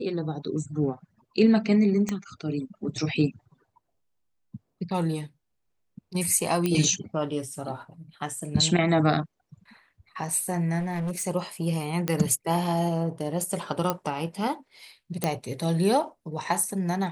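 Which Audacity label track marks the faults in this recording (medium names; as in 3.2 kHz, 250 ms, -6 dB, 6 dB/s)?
2.090000	2.090000	pop -15 dBFS
6.660000	6.660000	pop -12 dBFS
10.790000	11.270000	clipped -26.5 dBFS
12.080000	12.080000	pop -11 dBFS
13.900000	13.900000	pop -10 dBFS
15.240000	15.240000	pop -9 dBFS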